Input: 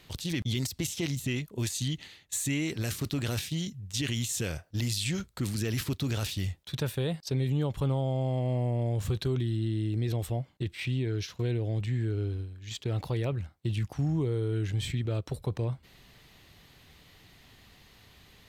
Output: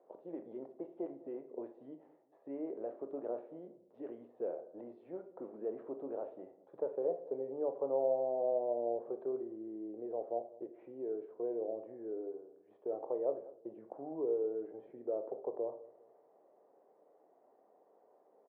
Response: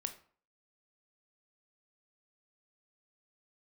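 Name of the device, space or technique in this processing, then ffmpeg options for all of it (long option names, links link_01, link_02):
next room: -filter_complex "[0:a]lowpass=frequency=490:width=0.5412,lowpass=frequency=490:width=1.3066,highpass=frequency=630:width=0.5412,highpass=frequency=630:width=1.3066,asplit=2[link_01][link_02];[link_02]adelay=203,lowpass=frequency=940:poles=1,volume=-18.5dB,asplit=2[link_03][link_04];[link_04]adelay=203,lowpass=frequency=940:poles=1,volume=0.41,asplit=2[link_05][link_06];[link_06]adelay=203,lowpass=frequency=940:poles=1,volume=0.41[link_07];[link_01][link_03][link_05][link_07]amix=inputs=4:normalize=0[link_08];[1:a]atrim=start_sample=2205[link_09];[link_08][link_09]afir=irnorm=-1:irlink=0,volume=16.5dB"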